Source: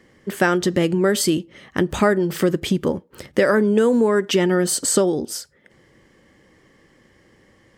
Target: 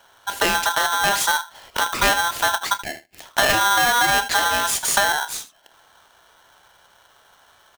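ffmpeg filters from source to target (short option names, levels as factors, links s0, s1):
-filter_complex "[0:a]asplit=3[s0][s1][s2];[s0]afade=t=out:st=2.73:d=0.02[s3];[s1]highpass=f=630:w=0.5412,highpass=f=630:w=1.3066,afade=t=in:st=2.73:d=0.02,afade=t=out:st=3.25:d=0.02[s4];[s2]afade=t=in:st=3.25:d=0.02[s5];[s3][s4][s5]amix=inputs=3:normalize=0,aecho=1:1:29|79:0.224|0.158,aeval=exprs='clip(val(0),-1,0.119)':c=same,aeval=exprs='val(0)*sgn(sin(2*PI*1200*n/s))':c=same"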